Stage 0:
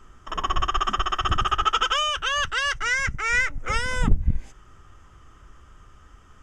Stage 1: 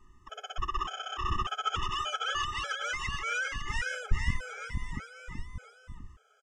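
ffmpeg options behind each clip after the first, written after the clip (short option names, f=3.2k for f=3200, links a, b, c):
-filter_complex "[0:a]asplit=2[a][b];[b]aecho=0:1:470|893|1274|1616|1925:0.631|0.398|0.251|0.158|0.1[c];[a][c]amix=inputs=2:normalize=0,afftfilt=real='re*gt(sin(2*PI*1.7*pts/sr)*(1-2*mod(floor(b*sr/1024/430),2)),0)':imag='im*gt(sin(2*PI*1.7*pts/sr)*(1-2*mod(floor(b*sr/1024/430),2)),0)':win_size=1024:overlap=0.75,volume=-8dB"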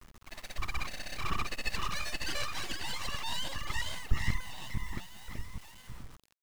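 -filter_complex "[0:a]aeval=exprs='abs(val(0))':c=same,asplit=2[a][b];[b]adelay=191,lowpass=f=2k:p=1,volume=-22.5dB,asplit=2[c][d];[d]adelay=191,lowpass=f=2k:p=1,volume=0.46,asplit=2[e][f];[f]adelay=191,lowpass=f=2k:p=1,volume=0.46[g];[a][c][e][g]amix=inputs=4:normalize=0,acrusher=bits=8:mix=0:aa=0.000001"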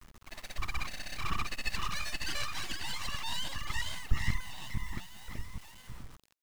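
-af "adynamicequalizer=threshold=0.00112:dfrequency=480:dqfactor=1.4:tfrequency=480:tqfactor=1.4:attack=5:release=100:ratio=0.375:range=3.5:mode=cutabove:tftype=bell"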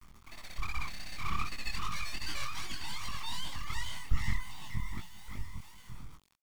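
-af "aecho=1:1:0.9:0.37,flanger=delay=19.5:depth=6.7:speed=2.6"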